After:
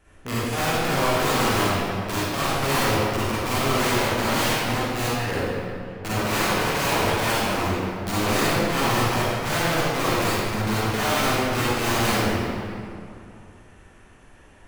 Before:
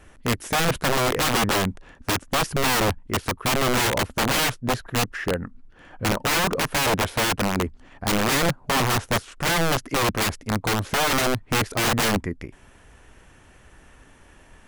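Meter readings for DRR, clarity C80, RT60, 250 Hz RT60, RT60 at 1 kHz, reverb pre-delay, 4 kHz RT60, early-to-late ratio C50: -10.0 dB, -3.5 dB, 2.6 s, 2.6 s, 2.6 s, 37 ms, 1.6 s, -7.0 dB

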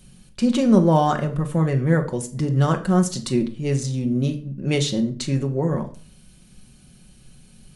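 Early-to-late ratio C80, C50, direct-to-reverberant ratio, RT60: 17.5 dB, 13.5 dB, 4.0 dB, 0.40 s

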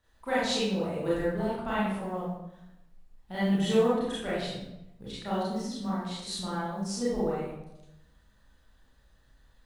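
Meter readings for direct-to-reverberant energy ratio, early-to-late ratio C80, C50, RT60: -10.0 dB, 2.5 dB, -1.5 dB, 0.90 s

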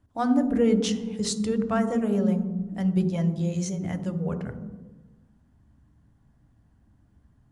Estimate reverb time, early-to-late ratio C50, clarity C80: 1.3 s, 9.5 dB, 11.5 dB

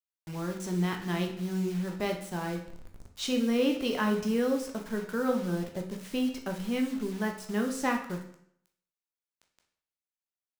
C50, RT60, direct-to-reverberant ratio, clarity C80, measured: 8.0 dB, 0.65 s, 2.5 dB, 11.5 dB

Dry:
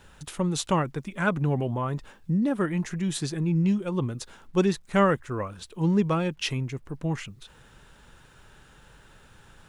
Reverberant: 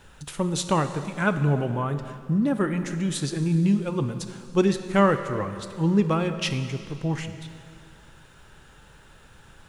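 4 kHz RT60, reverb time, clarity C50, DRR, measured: 2.3 s, 2.4 s, 9.5 dB, 8.5 dB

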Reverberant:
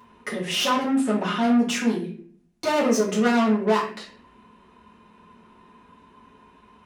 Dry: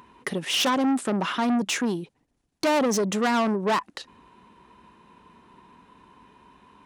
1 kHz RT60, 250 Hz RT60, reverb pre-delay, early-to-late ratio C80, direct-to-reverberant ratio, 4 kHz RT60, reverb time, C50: 0.40 s, 0.80 s, 4 ms, 10.5 dB, -7.5 dB, 0.35 s, 0.50 s, 6.5 dB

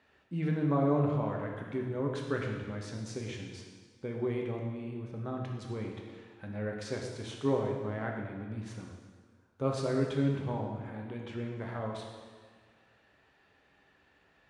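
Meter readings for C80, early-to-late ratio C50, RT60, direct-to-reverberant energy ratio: 4.5 dB, 3.0 dB, 1.6 s, -0.5 dB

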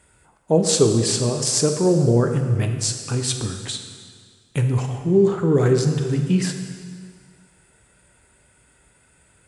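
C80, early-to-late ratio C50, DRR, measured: 7.5 dB, 6.5 dB, 4.5 dB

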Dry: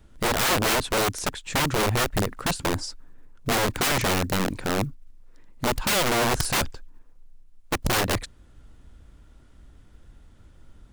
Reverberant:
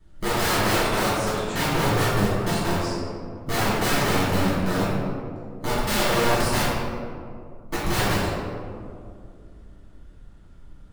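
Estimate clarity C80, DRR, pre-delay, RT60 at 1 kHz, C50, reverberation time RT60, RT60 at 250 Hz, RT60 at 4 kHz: -0.5 dB, -14.0 dB, 3 ms, 2.1 s, -2.5 dB, 2.4 s, 2.8 s, 0.95 s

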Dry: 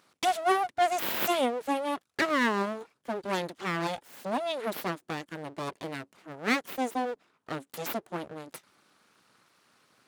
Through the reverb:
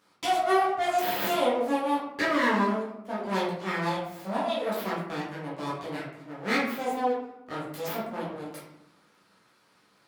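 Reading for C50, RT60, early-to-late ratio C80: 2.5 dB, 0.90 s, 6.5 dB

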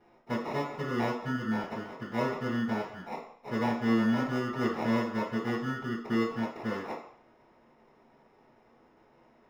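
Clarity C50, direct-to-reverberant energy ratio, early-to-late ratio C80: 5.0 dB, -13.0 dB, 9.0 dB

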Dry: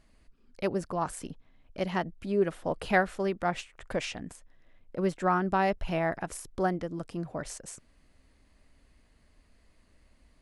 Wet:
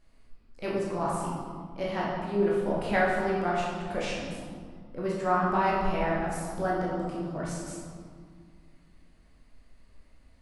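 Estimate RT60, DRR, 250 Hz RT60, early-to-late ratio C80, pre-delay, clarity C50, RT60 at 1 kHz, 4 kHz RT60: 2.0 s, -5.5 dB, 2.7 s, 2.0 dB, 14 ms, -0.5 dB, 2.0 s, 1.2 s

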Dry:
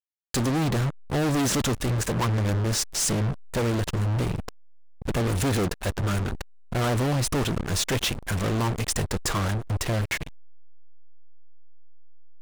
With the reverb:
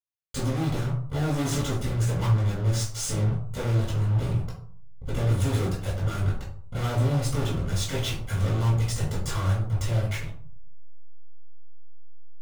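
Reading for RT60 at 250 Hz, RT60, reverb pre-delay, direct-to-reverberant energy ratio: 0.60 s, 0.50 s, 4 ms, -6.5 dB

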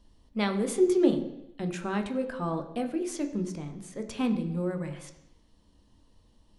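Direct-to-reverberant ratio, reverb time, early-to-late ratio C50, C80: 4.5 dB, 0.80 s, 10.0 dB, 12.5 dB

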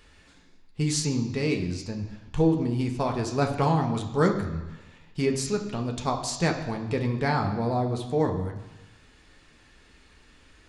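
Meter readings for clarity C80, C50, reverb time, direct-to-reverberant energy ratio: 10.5 dB, 8.5 dB, 1.1 s, 2.0 dB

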